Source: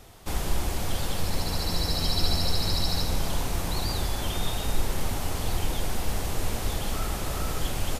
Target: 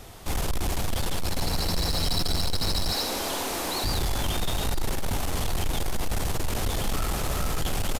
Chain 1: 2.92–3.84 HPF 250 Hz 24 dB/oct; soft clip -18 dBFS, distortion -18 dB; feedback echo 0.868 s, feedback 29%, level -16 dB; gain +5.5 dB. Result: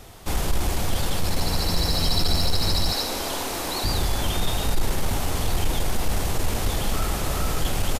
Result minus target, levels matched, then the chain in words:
soft clip: distortion -9 dB
2.92–3.84 HPF 250 Hz 24 dB/oct; soft clip -26.5 dBFS, distortion -9 dB; feedback echo 0.868 s, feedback 29%, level -16 dB; gain +5.5 dB

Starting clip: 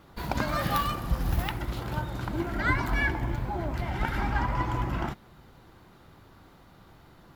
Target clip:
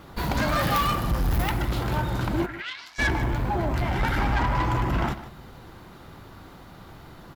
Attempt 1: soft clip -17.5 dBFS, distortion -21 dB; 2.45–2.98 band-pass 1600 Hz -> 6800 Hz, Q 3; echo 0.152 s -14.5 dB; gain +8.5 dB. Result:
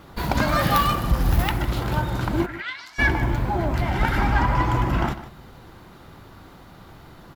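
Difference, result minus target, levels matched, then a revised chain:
soft clip: distortion -11 dB
soft clip -27.5 dBFS, distortion -10 dB; 2.45–2.98 band-pass 1600 Hz -> 6800 Hz, Q 3; echo 0.152 s -14.5 dB; gain +8.5 dB

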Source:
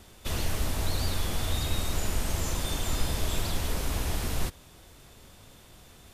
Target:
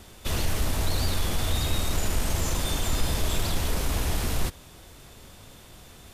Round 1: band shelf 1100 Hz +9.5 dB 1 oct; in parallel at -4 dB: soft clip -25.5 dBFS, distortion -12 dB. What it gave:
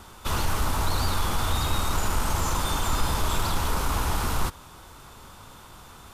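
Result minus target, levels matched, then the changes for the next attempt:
1000 Hz band +7.0 dB
remove: band shelf 1100 Hz +9.5 dB 1 oct

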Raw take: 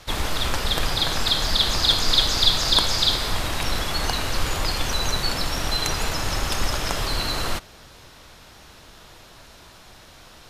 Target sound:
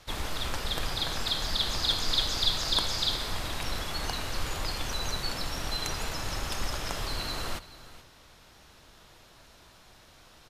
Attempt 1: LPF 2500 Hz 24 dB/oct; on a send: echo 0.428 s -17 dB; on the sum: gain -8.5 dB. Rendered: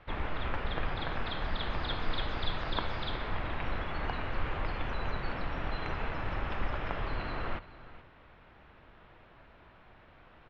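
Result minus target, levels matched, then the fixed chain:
2000 Hz band +5.5 dB
on a send: echo 0.428 s -17 dB; on the sum: gain -8.5 dB

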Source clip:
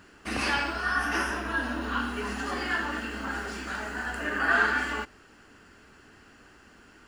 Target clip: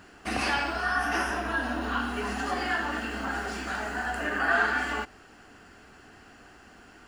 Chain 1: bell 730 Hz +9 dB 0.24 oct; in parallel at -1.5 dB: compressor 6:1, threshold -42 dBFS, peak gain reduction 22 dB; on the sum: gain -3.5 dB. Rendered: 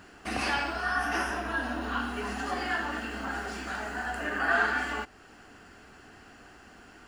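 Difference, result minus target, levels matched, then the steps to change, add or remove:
compressor: peak gain reduction +9.5 dB
change: compressor 6:1, threshold -30.5 dBFS, peak gain reduction 12.5 dB

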